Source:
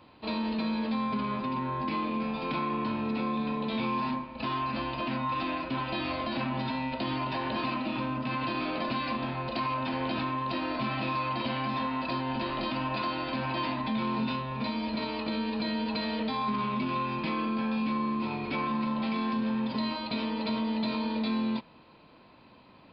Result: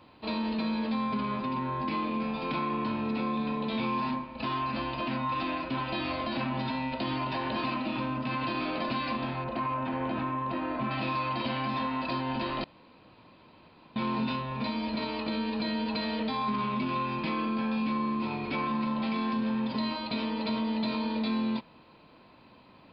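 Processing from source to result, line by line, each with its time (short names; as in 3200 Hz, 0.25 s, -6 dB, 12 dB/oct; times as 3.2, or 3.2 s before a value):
9.44–10.91 LPF 2000 Hz
12.64–13.96 room tone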